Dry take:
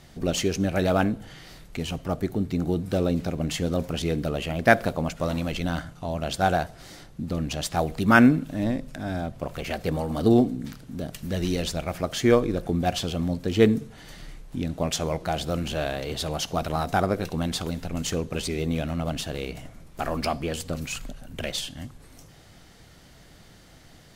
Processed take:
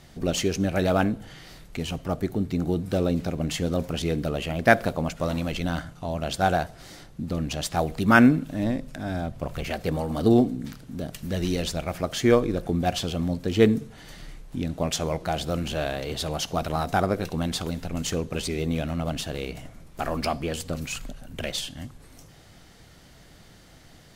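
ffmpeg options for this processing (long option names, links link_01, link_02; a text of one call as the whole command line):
ffmpeg -i in.wav -filter_complex "[0:a]asettb=1/sr,asplit=3[link_01][link_02][link_03];[link_01]atrim=end=9.094[link_04];[link_02]atrim=start=9.09:end=9.68,asetpts=PTS-STARTPTS,afade=type=in:duration=0.004:curve=qsin,afade=type=out:start_time=0.586:duration=0.004:curve=qsin,asubboost=boost=5.5:cutoff=240[link_05];[link_03]atrim=start=9.676[link_06];[link_04][link_05]acrossfade=duration=0.004:curve1=hsin:curve2=qsin[link_07];[link_07][link_06]acrossfade=duration=0.004:curve1=qsin:curve2=hsin" out.wav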